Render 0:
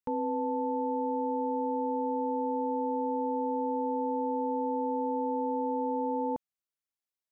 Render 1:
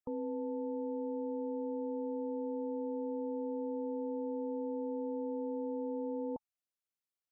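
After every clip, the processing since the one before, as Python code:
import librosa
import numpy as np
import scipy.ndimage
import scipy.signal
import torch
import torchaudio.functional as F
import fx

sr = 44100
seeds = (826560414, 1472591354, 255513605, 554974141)

y = fx.notch(x, sr, hz=870.0, q=12.0)
y = fx.spec_gate(y, sr, threshold_db=-25, keep='strong')
y = y * 10.0 ** (-5.0 / 20.0)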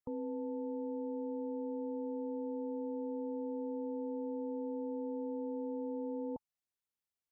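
y = fx.peak_eq(x, sr, hz=81.0, db=6.0, octaves=2.7)
y = y * 10.0 ** (-3.0 / 20.0)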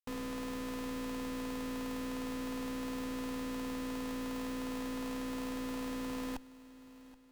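y = fx.schmitt(x, sr, flips_db=-49.0)
y = fx.echo_feedback(y, sr, ms=776, feedback_pct=45, wet_db=-18.5)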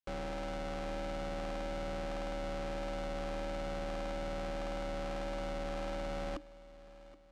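y = x * np.sin(2.0 * np.pi * 300.0 * np.arange(len(x)) / sr)
y = fx.air_absorb(y, sr, metres=83.0)
y = y * 10.0 ** (4.0 / 20.0)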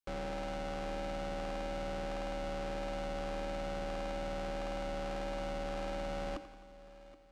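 y = fx.echo_feedback(x, sr, ms=87, feedback_pct=58, wet_db=-13.0)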